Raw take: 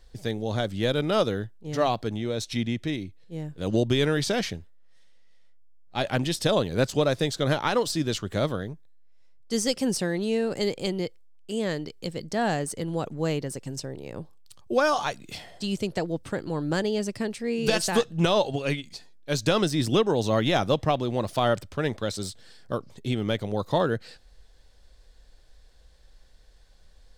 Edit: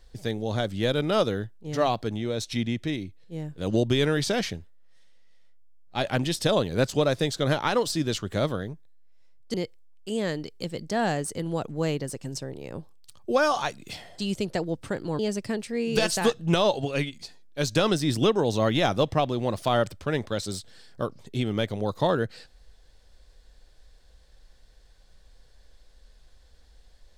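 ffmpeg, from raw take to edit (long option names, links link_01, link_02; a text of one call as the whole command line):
ffmpeg -i in.wav -filter_complex "[0:a]asplit=3[link_01][link_02][link_03];[link_01]atrim=end=9.542[link_04];[link_02]atrim=start=10.958:end=16.612[link_05];[link_03]atrim=start=16.898[link_06];[link_04][link_05]acrossfade=duration=0.004:curve1=hsin:curve2=hsin[link_07];[link_07][link_06]acrossfade=duration=0.004:curve1=hsin:curve2=hsin" out.wav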